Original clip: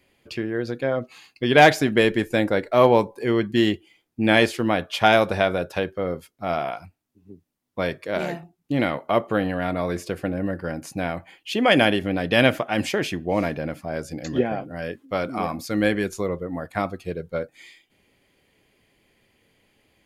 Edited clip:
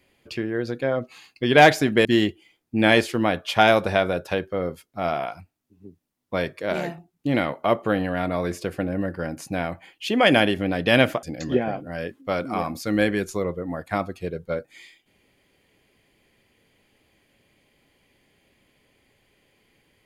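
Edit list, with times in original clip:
2.05–3.5 cut
12.68–14.07 cut

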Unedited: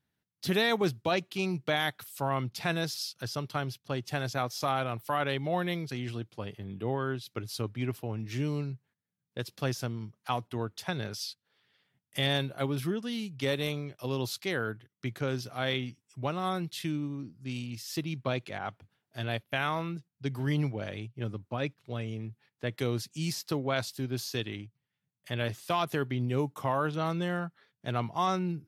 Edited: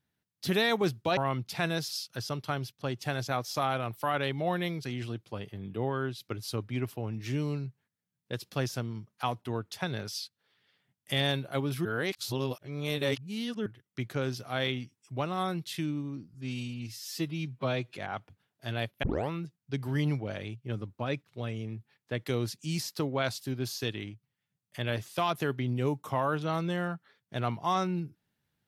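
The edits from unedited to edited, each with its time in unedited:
1.17–2.23 cut
12.91–14.72 reverse
17.4–18.48 stretch 1.5×
19.55 tape start 0.27 s

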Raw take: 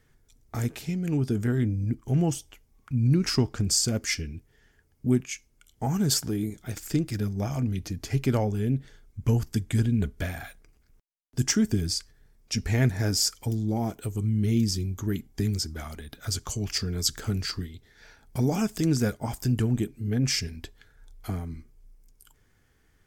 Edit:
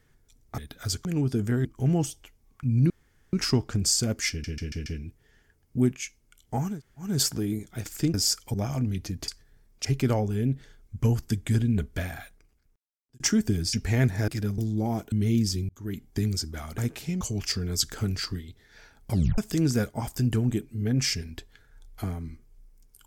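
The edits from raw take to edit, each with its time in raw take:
0.58–1.01 swap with 16–16.47
1.61–1.93 cut
3.18 insert room tone 0.43 s
4.15 stutter 0.14 s, 5 plays
5.99 insert room tone 0.38 s, crossfade 0.24 s
7.05–7.35 swap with 13.09–13.49
10.3–11.44 fade out
11.97–12.54 move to 8.09
14.03–14.34 cut
14.91–15.28 fade in
18.37 tape stop 0.27 s

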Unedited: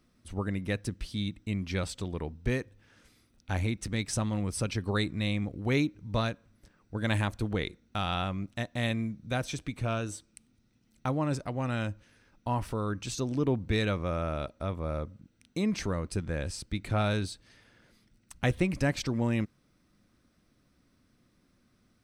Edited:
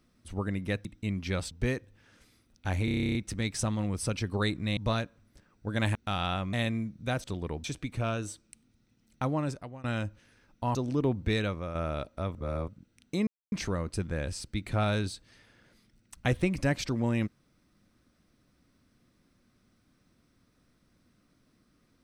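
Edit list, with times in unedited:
0.85–1.29 cut
1.95–2.35 move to 9.48
3.69 stutter 0.03 s, 11 plays
5.31–6.05 cut
7.23–7.83 cut
8.41–8.77 cut
11.19–11.68 fade out, to -21 dB
12.59–13.18 cut
13.74–14.18 fade out linear, to -7 dB
14.78–15.11 reverse
15.7 insert silence 0.25 s

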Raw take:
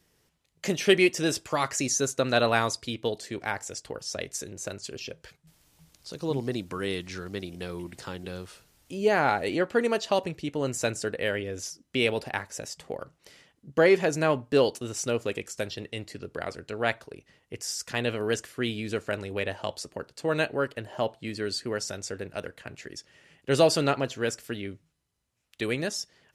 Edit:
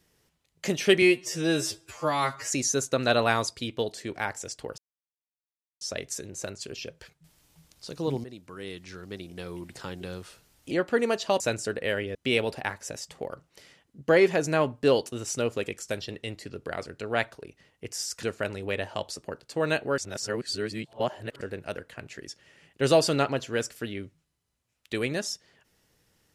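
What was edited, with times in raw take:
1.02–1.76 stretch 2×
4.04 insert silence 1.03 s
6.47–8.15 fade in, from -14.5 dB
8.94–9.53 cut
10.22–10.77 cut
11.52–11.84 cut
17.92–18.91 cut
20.66–22.09 reverse

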